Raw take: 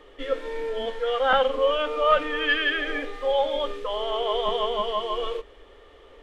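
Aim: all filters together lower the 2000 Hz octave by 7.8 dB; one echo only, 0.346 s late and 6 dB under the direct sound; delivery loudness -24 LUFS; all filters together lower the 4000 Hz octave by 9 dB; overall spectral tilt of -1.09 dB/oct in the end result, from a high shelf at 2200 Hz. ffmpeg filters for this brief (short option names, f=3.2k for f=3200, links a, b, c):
-af "equalizer=f=2k:t=o:g=-7,highshelf=f=2.2k:g=-4.5,equalizer=f=4k:t=o:g=-5,aecho=1:1:346:0.501,volume=2.5dB"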